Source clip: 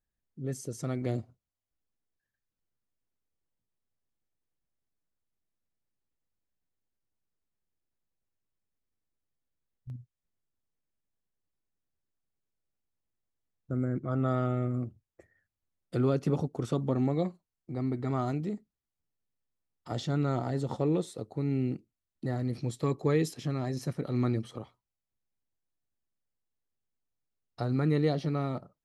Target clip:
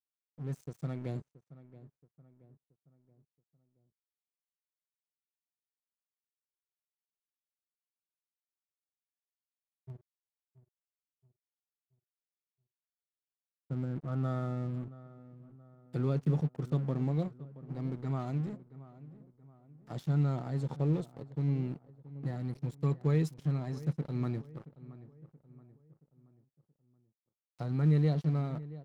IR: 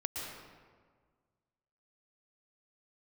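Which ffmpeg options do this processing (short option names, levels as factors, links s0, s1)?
-filter_complex "[0:a]equalizer=f=150:w=2.9:g=12,aeval=exprs='sgn(val(0))*max(abs(val(0))-0.00944,0)':c=same,asplit=2[s0][s1];[s1]adelay=676,lowpass=f=1800:p=1,volume=0.141,asplit=2[s2][s3];[s3]adelay=676,lowpass=f=1800:p=1,volume=0.46,asplit=2[s4][s5];[s5]adelay=676,lowpass=f=1800:p=1,volume=0.46,asplit=2[s6][s7];[s7]adelay=676,lowpass=f=1800:p=1,volume=0.46[s8];[s0][s2][s4][s6][s8]amix=inputs=5:normalize=0,volume=0.422"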